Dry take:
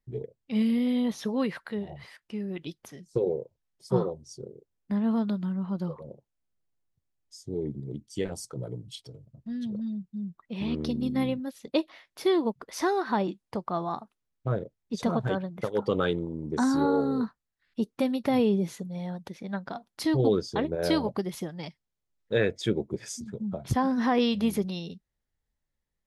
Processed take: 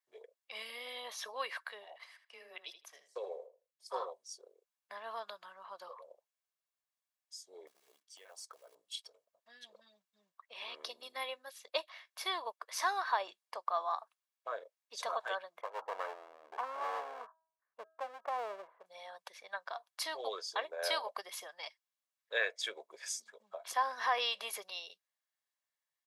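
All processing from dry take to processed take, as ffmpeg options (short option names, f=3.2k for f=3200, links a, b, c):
-filter_complex "[0:a]asettb=1/sr,asplit=3[a][b][c];[a]atrim=end=1.984[d];[b]atrim=start=1.98:end=4.05,asetpts=PTS-STARTPTS,afade=t=in:d=0.004:c=qsin,afade=t=out:st=2.066:d=0.004:c=qsin,agate=range=-7dB:threshold=-48dB:ratio=16:release=100:detection=peak,afreqshift=14,asplit=2[e][f];[f]adelay=79,lowpass=f=4.8k:p=1,volume=-10dB,asplit=2[g][h];[h]adelay=79,lowpass=f=4.8k:p=1,volume=0.19,asplit=2[i][j];[j]adelay=79,lowpass=f=4.8k:p=1,volume=0.19[k];[e][g][i][k]amix=inputs=4:normalize=0,atrim=end_sample=91287[l];[c]atrim=start=4.046[m];[d][l]acrossfade=d=0.004:c1=hsin:c2=qsin[n];[n][m]acrossfade=d=0.004:c1=qsin:c2=hsin,asettb=1/sr,asplit=3[o][p][q];[o]atrim=end=7.674[r];[p]atrim=start=7.67:end=8.75,asetpts=PTS-STARTPTS,afade=t=in:d=0.004:c=qsin,afade=t=out:st=1.076:d=0.004:c=qsin,aemphasis=mode=reproduction:type=50kf,acompressor=threshold=-39dB:ratio=10:attack=3.2:release=140:knee=1:detection=peak,acrusher=bits=7:mode=log:mix=0:aa=0.000001[s];[q]atrim=start=8.746[t];[r][s]acrossfade=d=0.004:c1=hsin:c2=qsin[u];[u][t]acrossfade=d=0.004:c1=qsin:c2=hsin,asettb=1/sr,asplit=3[v][w][x];[v]atrim=end=15.614[y];[w]atrim=start=15.61:end=18.86,asetpts=PTS-STARTPTS,afade=t=in:d=0.004:c=qsin,afade=t=out:st=3.246:d=0.004:c=qsin,lowpass=f=1.1k:w=0.5412,lowpass=f=1.1k:w=1.3066,aeval=exprs='clip(val(0),-1,0.015)':c=same,bandreject=f=322:t=h:w=4,bandreject=f=644:t=h:w=4,bandreject=f=966:t=h:w=4,bandreject=f=1.288k:t=h:w=4,bandreject=f=1.61k:t=h:w=4[z];[x]atrim=start=18.856[aa];[y][z]acrossfade=d=0.004:c1=hsin:c2=qsin[ab];[ab][aa]acrossfade=d=0.004:c1=qsin:c2=hsin,highpass=f=740:w=0.5412,highpass=f=740:w=1.3066,aecho=1:1:1.8:0.36,volume=-1.5dB"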